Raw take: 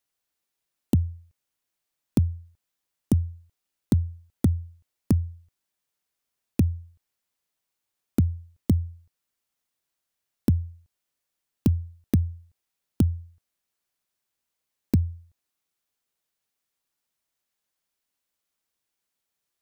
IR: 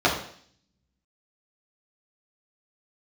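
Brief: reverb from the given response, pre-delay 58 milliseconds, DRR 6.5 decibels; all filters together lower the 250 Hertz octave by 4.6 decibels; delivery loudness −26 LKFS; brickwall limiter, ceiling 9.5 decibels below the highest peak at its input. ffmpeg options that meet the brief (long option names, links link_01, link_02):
-filter_complex "[0:a]equalizer=frequency=250:width_type=o:gain=-6,alimiter=limit=-20.5dB:level=0:latency=1,asplit=2[link_01][link_02];[1:a]atrim=start_sample=2205,adelay=58[link_03];[link_02][link_03]afir=irnorm=-1:irlink=0,volume=-25dB[link_04];[link_01][link_04]amix=inputs=2:normalize=0,volume=7dB"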